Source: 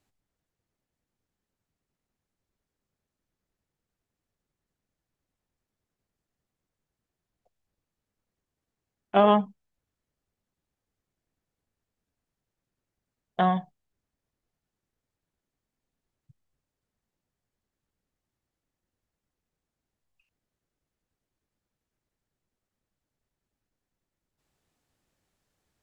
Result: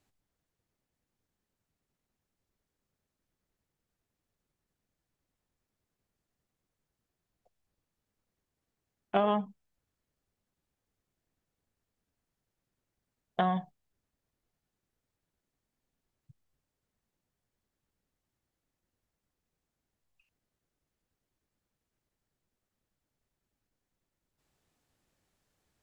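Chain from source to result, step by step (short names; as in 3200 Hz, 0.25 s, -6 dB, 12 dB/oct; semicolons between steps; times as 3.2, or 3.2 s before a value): compressor 4:1, threshold -25 dBFS, peak gain reduction 9 dB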